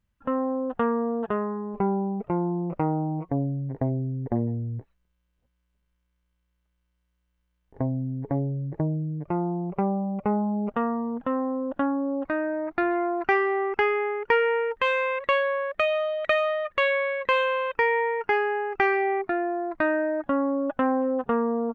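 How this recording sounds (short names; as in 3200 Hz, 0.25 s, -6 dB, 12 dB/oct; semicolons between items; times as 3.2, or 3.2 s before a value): noise floor -75 dBFS; spectral tilt -5.0 dB/oct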